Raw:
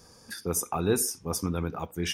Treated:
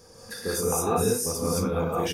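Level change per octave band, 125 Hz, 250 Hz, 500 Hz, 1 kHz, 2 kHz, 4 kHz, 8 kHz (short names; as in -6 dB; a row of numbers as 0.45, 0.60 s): +2.0, +2.0, +6.0, +6.0, +1.5, +1.0, +2.0 dB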